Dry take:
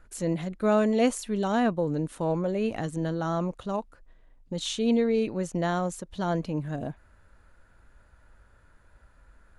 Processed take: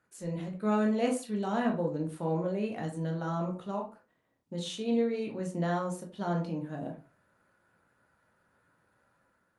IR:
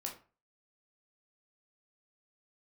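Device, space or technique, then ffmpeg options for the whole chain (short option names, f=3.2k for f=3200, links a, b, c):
far-field microphone of a smart speaker: -filter_complex "[0:a]asplit=3[a][b][c];[a]afade=t=out:st=4.6:d=0.02[d];[b]bandreject=f=60:t=h:w=6,bandreject=f=120:t=h:w=6,bandreject=f=180:t=h:w=6,bandreject=f=240:t=h:w=6,bandreject=f=300:t=h:w=6,bandreject=f=360:t=h:w=6,bandreject=f=420:t=h:w=6,bandreject=f=480:t=h:w=6,bandreject=f=540:t=h:w=6,afade=t=in:st=4.6:d=0.02,afade=t=out:st=5.25:d=0.02[e];[c]afade=t=in:st=5.25:d=0.02[f];[d][e][f]amix=inputs=3:normalize=0[g];[1:a]atrim=start_sample=2205[h];[g][h]afir=irnorm=-1:irlink=0,highpass=f=110:w=0.5412,highpass=f=110:w=1.3066,dynaudnorm=f=110:g=7:m=5dB,volume=-8.5dB" -ar 48000 -c:a libopus -b:a 48k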